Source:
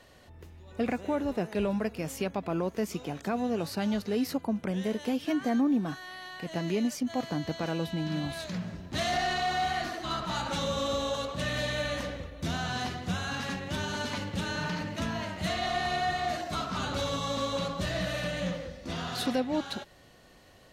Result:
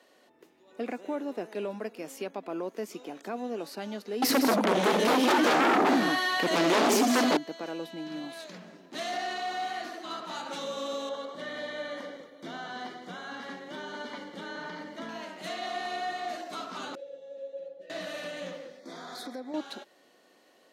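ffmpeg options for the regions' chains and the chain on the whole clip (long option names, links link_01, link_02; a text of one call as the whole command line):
ffmpeg -i in.wav -filter_complex "[0:a]asettb=1/sr,asplit=3[link_01][link_02][link_03];[link_01]atrim=end=4.224[link_04];[link_02]atrim=start=4.22:end=7.37,asetpts=PTS-STARTPTS,afade=type=in:duration=0.004:curve=qsin,afade=type=out:start_time=3.146:duration=0.004:curve=qsin,aecho=1:1:80|162|227:0.299|0.398|0.376,atrim=end_sample=138915,aeval=exprs='0.178*sin(PI/2*5.62*val(0)/0.178)':channel_layout=same[link_05];[link_03]atrim=start=7.366[link_06];[link_04][link_05]acrossfade=duration=0.004:curve1=hsin:curve2=qsin[link_07];[link_07][link_06]acrossfade=duration=0.004:curve1=qsin:curve2=hsin,asettb=1/sr,asplit=3[link_08][link_09][link_10];[link_08]atrim=end=11.094[link_11];[link_09]atrim=start=11.09:end=15.09,asetpts=PTS-STARTPTS,afade=type=in:duration=0.004:curve=qsin,afade=type=out:start_time=3.996:duration=0.004:curve=qsin,asuperstop=centerf=2600:order=4:qfactor=5.6,acrossover=split=4000[link_12][link_13];[link_13]acompressor=threshold=-56dB:ratio=4:attack=1:release=60[link_14];[link_12][link_14]amix=inputs=2:normalize=0[link_15];[link_10]atrim=start=15.086[link_16];[link_11][link_15]acrossfade=duration=0.004:curve1=hsin:curve2=qsin[link_17];[link_17][link_16]acrossfade=duration=0.004:curve1=qsin:curve2=hsin,asettb=1/sr,asplit=3[link_18][link_19][link_20];[link_18]atrim=end=16.954[link_21];[link_19]atrim=start=16.95:end=17.9,asetpts=PTS-STARTPTS,afade=type=in:duration=0.004:curve=qsin,afade=type=out:start_time=0.946:duration=0.004:curve=qsin,asplit=3[link_22][link_23][link_24];[link_22]bandpass=frequency=530:width_type=q:width=8,volume=0dB[link_25];[link_23]bandpass=frequency=1840:width_type=q:width=8,volume=-6dB[link_26];[link_24]bandpass=frequency=2480:width_type=q:width=8,volume=-9dB[link_27];[link_25][link_26][link_27]amix=inputs=3:normalize=0,equalizer=frequency=2300:width_type=o:width=2.8:gain=-13,aecho=1:1:5.9:0.98,atrim=end_sample=41895[link_28];[link_20]atrim=start=17.896[link_29];[link_21][link_28]acrossfade=duration=0.004:curve1=hsin:curve2=qsin[link_30];[link_30][link_29]acrossfade=duration=0.004:curve1=qsin:curve2=hsin,asettb=1/sr,asplit=3[link_31][link_32][link_33];[link_31]atrim=end=18.794[link_34];[link_32]atrim=start=18.79:end=19.54,asetpts=PTS-STARTPTS,afade=type=in:duration=0.004:curve=qsin,afade=type=out:start_time=0.746:duration=0.004:curve=qsin,asuperstop=centerf=2800:order=4:qfactor=2.6,acompressor=threshold=-32dB:ratio=4:attack=3.2:release=140:knee=1:detection=peak[link_35];[link_33]atrim=start=19.536[link_36];[link_34][link_35]acrossfade=duration=0.004:curve1=hsin:curve2=qsin[link_37];[link_37][link_36]acrossfade=duration=0.004:curve1=qsin:curve2=hsin,highpass=frequency=270:width=0.5412,highpass=frequency=270:width=1.3066,lowshelf=frequency=430:gain=5,volume=-5dB" out.wav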